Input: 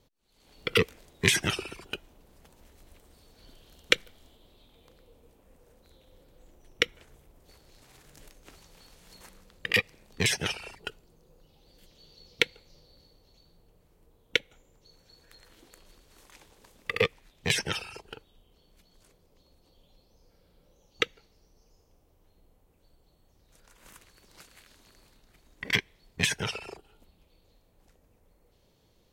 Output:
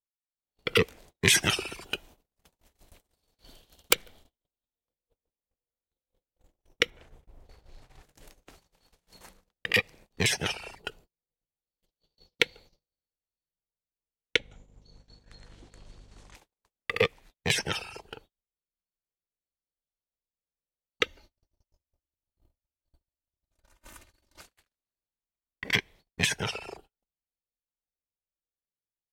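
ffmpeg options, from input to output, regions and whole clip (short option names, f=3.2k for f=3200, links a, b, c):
-filter_complex "[0:a]asettb=1/sr,asplit=3[a][b][c];[a]atrim=end=1.304[d];[b]atrim=start=1.3:end=3.94,asetpts=PTS-STARTPTS,afade=t=in:d=0.004:c=qsin,afade=t=out:st=2.636:d=0.004:c=qsin,highshelf=f=2k:g=6,aeval=exprs='(mod(2.11*val(0)+1,2)-1)/2.11':c=same[e];[c]atrim=start=3.936[f];[d][e]acrossfade=d=0.004:c1=hsin:c2=qsin[g];[g][f]acrossfade=d=0.004:c1=qsin:c2=hsin,asettb=1/sr,asplit=3[h][i][j];[h]atrim=end=6.904[k];[i]atrim=start=6.9:end=8.03,asetpts=PTS-STARTPTS,afade=t=in:d=0.004:c=qsin,afade=t=out:st=1.126:d=0.004:c=qsin,lowpass=f=3.3k:p=1,asubboost=boost=7:cutoff=110,asplit=2[l][m];[m]adelay=39,volume=-8.5dB[n];[l][n]amix=inputs=2:normalize=0,atrim=end_sample=49833[o];[j]atrim=start=8.026[p];[k][o]acrossfade=d=0.004:c1=hsin:c2=qsin[q];[q][p]acrossfade=d=0.004:c1=qsin:c2=hsin,asettb=1/sr,asplit=3[r][s][t];[r]atrim=end=14.364[u];[s]atrim=start=14.36:end=16.35,asetpts=PTS-STARTPTS,afade=t=in:d=0.004:c=qsin,afade=t=out:st=1.986:d=0.004:c=qsin,lowpass=f=8.5k:w=0.5412,lowpass=f=8.5k:w=1.3066,lowshelf=f=170:g=7.5,aeval=exprs='val(0)+0.002*(sin(2*PI*50*n/s)+sin(2*PI*2*50*n/s)/2+sin(2*PI*3*50*n/s)/3+sin(2*PI*4*50*n/s)/4+sin(2*PI*5*50*n/s)/5)':c=same[v];[t]atrim=start=16.346[w];[u][v]acrossfade=d=0.004:c1=hsin:c2=qsin[x];[x][w]acrossfade=d=0.004:c1=qsin:c2=hsin,asettb=1/sr,asplit=3[y][z][aa];[y]atrim=end=21.034[ab];[z]atrim=start=21.03:end=24.41,asetpts=PTS-STARTPTS,afade=t=in:d=0.004:c=qsin,afade=t=out:st=3.376:d=0.004:c=qsin,equalizer=f=75:w=1.4:g=8.5,aecho=1:1:3.3:0.74,atrim=end_sample=149058[ac];[aa]atrim=start=24.406[ad];[ab][ac]acrossfade=d=0.004:c1=hsin:c2=qsin[ae];[ae][ad]acrossfade=d=0.004:c1=qsin:c2=hsin,agate=range=-41dB:threshold=-52dB:ratio=16:detection=peak,equalizer=f=750:t=o:w=0.77:g=3.5"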